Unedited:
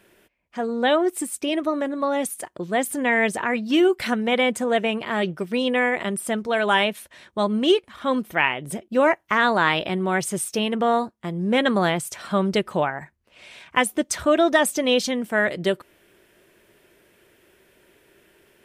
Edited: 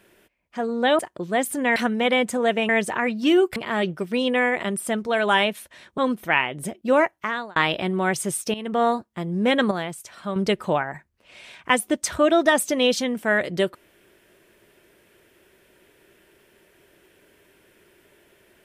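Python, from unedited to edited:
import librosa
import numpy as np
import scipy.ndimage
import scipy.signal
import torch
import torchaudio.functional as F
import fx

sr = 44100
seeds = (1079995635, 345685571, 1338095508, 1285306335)

y = fx.edit(x, sr, fx.cut(start_s=0.99, length_s=1.4),
    fx.move(start_s=3.16, length_s=0.87, to_s=4.96),
    fx.cut(start_s=7.38, length_s=0.67),
    fx.fade_out_span(start_s=9.05, length_s=0.58),
    fx.fade_in_from(start_s=10.61, length_s=0.28, floor_db=-14.5),
    fx.clip_gain(start_s=11.78, length_s=0.65, db=-7.5), tone=tone)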